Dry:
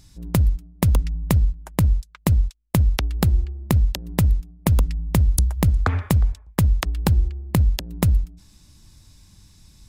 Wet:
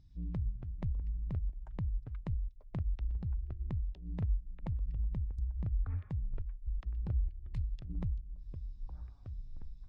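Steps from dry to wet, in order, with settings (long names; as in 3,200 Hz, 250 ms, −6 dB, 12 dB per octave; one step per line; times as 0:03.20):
0:07.28–0:07.90: tilt shelving filter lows −9.5 dB, about 1,100 Hz
brickwall limiter −15.5 dBFS, peak gain reduction 15.5 dB
downward compressor 12 to 1, threshold −33 dBFS, peak gain reduction 15.5 dB
0:06.08: tape stop 0.59 s
low-pass filter 4,600 Hz 12 dB per octave
delay with pitch and tempo change per echo 108 ms, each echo −7 semitones, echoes 3, each echo −6 dB
every bin expanded away from the loudest bin 1.5 to 1
level −7 dB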